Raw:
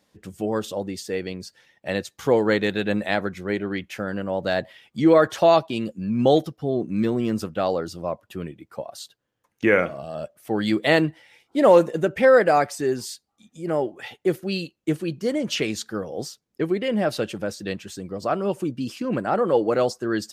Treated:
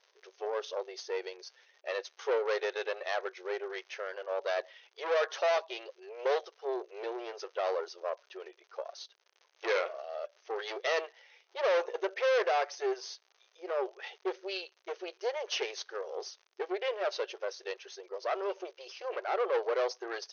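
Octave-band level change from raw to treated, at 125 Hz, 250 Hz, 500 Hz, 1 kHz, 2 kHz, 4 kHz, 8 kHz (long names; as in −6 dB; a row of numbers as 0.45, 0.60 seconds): below −40 dB, −24.0 dB, −11.0 dB, −10.0 dB, −9.5 dB, −7.5 dB, −10.0 dB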